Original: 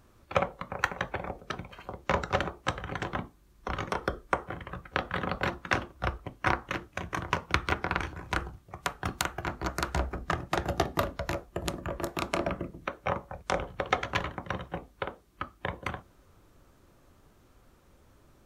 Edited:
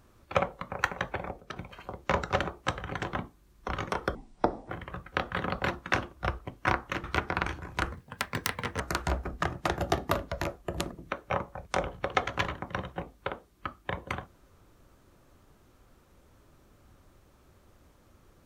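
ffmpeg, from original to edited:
-filter_complex "[0:a]asplit=8[a][b][c][d][e][f][g][h];[a]atrim=end=1.56,asetpts=PTS-STARTPTS,afade=t=out:st=1.22:d=0.34:silence=0.473151[i];[b]atrim=start=1.56:end=4.154,asetpts=PTS-STARTPTS,afade=t=in:d=0.004:c=hsin:silence=0.473151[j];[c]atrim=start=4.15:end=4.49,asetpts=PTS-STARTPTS,asetrate=27342,aresample=44100[k];[d]atrim=start=4.486:end=6.832[l];[e]atrim=start=7.578:end=8.464[m];[f]atrim=start=8.46:end=9.68,asetpts=PTS-STARTPTS,asetrate=60858,aresample=44100[n];[g]atrim=start=9.676:end=11.792[o];[h]atrim=start=12.668[p];[i][j]concat=n=2:v=0:a=1[q];[q][k]acrossfade=d=0.004:c1=hsin:c2=hsin[r];[r][l]acrossfade=d=0.004:c1=hsin:c2=hsin[s];[s][m]acrossfade=d=0.004:c1=hsin:c2=hsin[t];[t][n]acrossfade=d=0.004:c1=hsin:c2=hsin[u];[u][o]acrossfade=d=0.004:c1=hsin:c2=hsin[v];[v][p]acrossfade=d=0.004:c1=hsin:c2=hsin"

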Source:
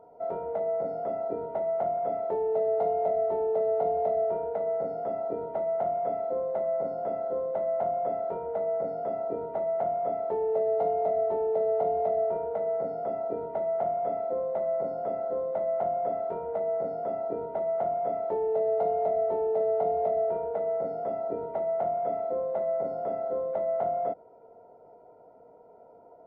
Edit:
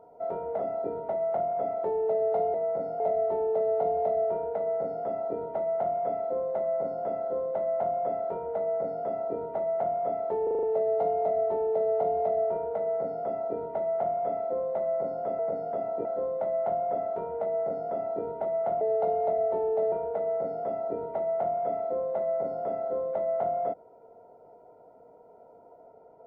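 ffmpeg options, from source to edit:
-filter_complex "[0:a]asplit=13[a][b][c][d][e][f][g][h][i][j][k][l][m];[a]atrim=end=0.592[n];[b]atrim=start=1.048:end=3.002[o];[c]atrim=start=0.588:end=1.052[p];[d]atrim=start=2.998:end=10.472[q];[e]atrim=start=10.428:end=10.472[r];[f]atrim=start=10.428:end=10.472[s];[g]atrim=start=10.428:end=10.472[t];[h]atrim=start=10.428:end=10.472[u];[i]atrim=start=10.428:end=15.192[v];[j]atrim=start=8.708:end=9.372[w];[k]atrim=start=15.188:end=17.952[x];[l]atrim=start=18.588:end=19.702[y];[m]atrim=start=20.318[z];[n][o]acrossfade=d=0.004:c1=hsin:c2=hsin[aa];[aa][p]acrossfade=d=0.004:c1=hsin:c2=hsin[ab];[ab][q]acrossfade=d=0.004:c1=hsin:c2=hsin[ac];[ac][r]acrossfade=d=0.004:c1=hsin:c2=hsin[ad];[ad][s]acrossfade=d=0.004:c1=hsin:c2=hsin[ae];[ae][t]acrossfade=d=0.004:c1=hsin:c2=hsin[af];[af][u]acrossfade=d=0.004:c1=hsin:c2=hsin[ag];[ag][v]acrossfade=d=0.004:c1=hsin:c2=hsin[ah];[ah][w]acrossfade=d=0.004:c1=hsin:c2=hsin[ai];[ai][x]acrossfade=d=0.004:c1=hsin:c2=hsin[aj];[aj][y]acrossfade=d=0.004:c1=hsin:c2=hsin[ak];[ak][z]acrossfade=d=0.004:c1=hsin:c2=hsin"

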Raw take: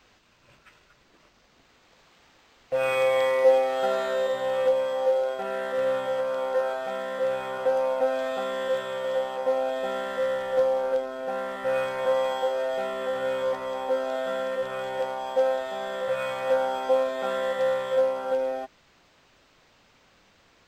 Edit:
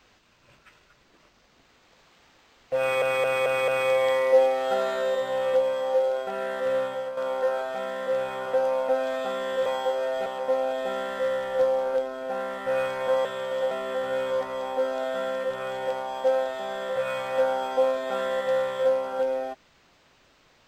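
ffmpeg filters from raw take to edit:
-filter_complex "[0:a]asplit=10[a][b][c][d][e][f][g][h][i][j];[a]atrim=end=3.022[k];[b]atrim=start=2.798:end=3.022[l];[c]atrim=start=2.798:end=3.022[m];[d]atrim=start=2.798:end=3.022[n];[e]atrim=start=2.798:end=6.29,asetpts=PTS-STARTPTS,afade=t=out:st=3.072:d=0.42:silence=0.398107[o];[f]atrim=start=6.29:end=8.782,asetpts=PTS-STARTPTS,afade=t=in:d=0.004:c=hsin:silence=0.398107[p];[g]atrim=start=12.228:end=12.832[q];[h]atrim=start=9.238:end=12.232[r];[i]atrim=start=8.778:end=9.242[s];[j]atrim=start=12.828[t];[k][l]acrossfade=d=0.004:c1=hsin:c2=hsin[u];[u][m]acrossfade=d=0.004:c1=hsin:c2=hsin[v];[v][n]acrossfade=d=0.004:c1=hsin:c2=hsin[w];[o][p]concat=n=2:v=0:a=1[x];[w][x]acrossfade=d=0.004:c1=hsin:c2=hsin[y];[y][q]acrossfade=d=0.004:c1=hsin:c2=hsin[z];[z][r]acrossfade=d=0.004:c1=hsin:c2=hsin[aa];[aa][s]acrossfade=d=0.004:c1=hsin:c2=hsin[ab];[ab][t]acrossfade=d=0.004:c1=hsin:c2=hsin"

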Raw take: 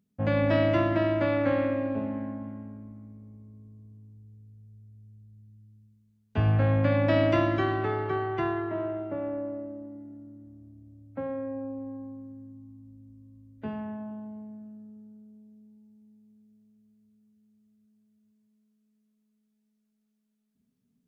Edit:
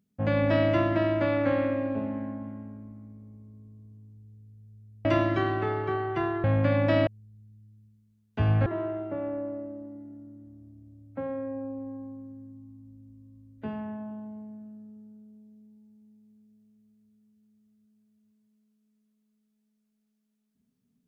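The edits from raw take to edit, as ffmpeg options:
-filter_complex "[0:a]asplit=5[a][b][c][d][e];[a]atrim=end=5.052[f];[b]atrim=start=7.268:end=8.662[g];[c]atrim=start=6.638:end=7.272[h];[d]atrim=start=5.048:end=6.642[i];[e]atrim=start=8.658[j];[f][g]acrossfade=d=0.004:c1=hsin:c2=hsin[k];[k][h]acrossfade=d=0.004:c1=hsin:c2=hsin[l];[l][i]acrossfade=d=0.004:c1=hsin:c2=hsin[m];[m][j]acrossfade=d=0.004:c1=hsin:c2=hsin"

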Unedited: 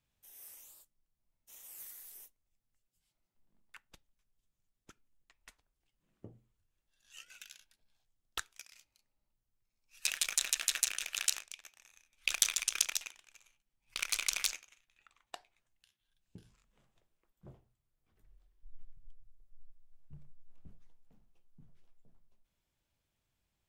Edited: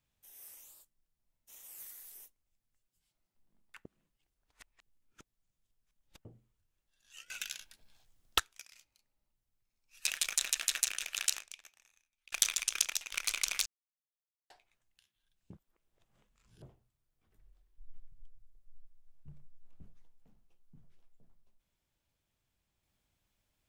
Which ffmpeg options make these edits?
-filter_complex "[0:a]asplit=11[a][b][c][d][e][f][g][h][i][j][k];[a]atrim=end=3.852[l];[b]atrim=start=3.848:end=6.252,asetpts=PTS-STARTPTS,areverse[m];[c]atrim=start=6.248:end=7.302[n];[d]atrim=start=7.298:end=8.392,asetpts=PTS-STARTPTS,volume=11.5dB[o];[e]atrim=start=8.388:end=12.32,asetpts=PTS-STARTPTS,afade=t=out:st=3.012:d=0.92[p];[f]atrim=start=12.32:end=13.122,asetpts=PTS-STARTPTS,afade=t=in:d=0.004:c=hsin[q];[g]atrim=start=13.968:end=14.51,asetpts=PTS-STARTPTS,afade=t=out:st=0.538:d=0.004:c=hsin[r];[h]atrim=start=14.51:end=15.35,asetpts=PTS-STARTPTS,volume=0[s];[i]atrim=start=15.35:end=16.382,asetpts=PTS-STARTPTS,afade=t=in:d=0.004:c=hsin[t];[j]atrim=start=16.378:end=17.472,asetpts=PTS-STARTPTS,areverse[u];[k]atrim=start=17.468[v];[l][m]acrossfade=d=0.004:c1=hsin:c2=hsin[w];[w][n]acrossfade=d=0.004:c1=hsin:c2=hsin[x];[x][o]acrossfade=d=0.004:c1=hsin:c2=hsin[y];[p][q]concat=n=2:v=0:a=1[z];[y][z]acrossfade=d=0.004:c1=hsin:c2=hsin[aa];[r][s][t]concat=n=3:v=0:a=1[ab];[aa][ab]acrossfade=d=0.004:c1=hsin:c2=hsin[ac];[ac][u]acrossfade=d=0.004:c1=hsin:c2=hsin[ad];[ad][v]acrossfade=d=0.004:c1=hsin:c2=hsin"

